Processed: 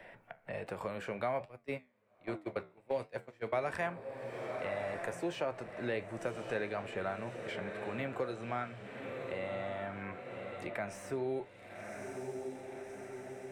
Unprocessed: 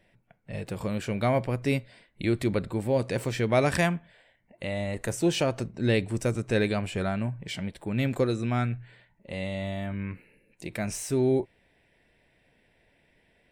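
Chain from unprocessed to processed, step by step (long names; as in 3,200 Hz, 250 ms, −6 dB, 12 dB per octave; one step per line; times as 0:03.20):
three-way crossover with the lows and the highs turned down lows −15 dB, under 480 Hz, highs −14 dB, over 2,100 Hz
feedback delay with all-pass diffusion 1,135 ms, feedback 41%, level −11 dB
0:01.45–0:03.65: noise gate −32 dBFS, range −29 dB
flanger 1.3 Hz, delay 9.8 ms, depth 4.9 ms, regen −73%
multiband upward and downward compressor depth 70%
level +1 dB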